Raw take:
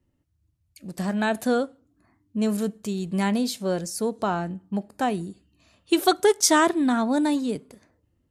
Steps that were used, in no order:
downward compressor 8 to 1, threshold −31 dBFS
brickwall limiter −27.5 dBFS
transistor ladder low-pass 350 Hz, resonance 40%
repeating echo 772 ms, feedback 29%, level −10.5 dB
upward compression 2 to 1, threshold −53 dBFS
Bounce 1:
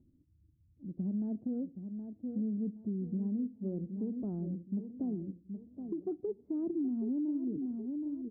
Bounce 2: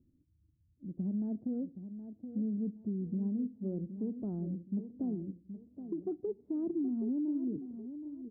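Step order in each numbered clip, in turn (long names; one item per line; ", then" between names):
transistor ladder low-pass, then upward compression, then repeating echo, then downward compressor, then brickwall limiter
upward compression, then transistor ladder low-pass, then downward compressor, then repeating echo, then brickwall limiter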